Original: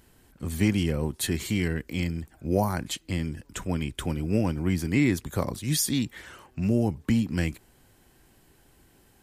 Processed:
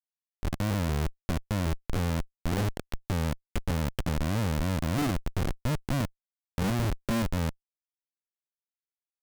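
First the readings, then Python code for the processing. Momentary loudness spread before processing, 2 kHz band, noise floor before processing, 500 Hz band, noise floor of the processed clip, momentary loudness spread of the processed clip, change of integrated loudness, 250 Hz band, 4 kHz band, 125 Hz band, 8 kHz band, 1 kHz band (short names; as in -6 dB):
10 LU, -3.5 dB, -61 dBFS, -4.0 dB, under -85 dBFS, 6 LU, -3.5 dB, -5.5 dB, -4.5 dB, -1.0 dB, -9.0 dB, +0.5 dB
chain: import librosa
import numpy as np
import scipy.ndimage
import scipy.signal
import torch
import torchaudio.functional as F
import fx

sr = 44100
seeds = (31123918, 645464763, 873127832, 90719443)

y = fx.env_lowpass_down(x, sr, base_hz=550.0, full_db=-22.0)
y = fx.schmitt(y, sr, flips_db=-28.0)
y = y * 10.0 ** (2.5 / 20.0)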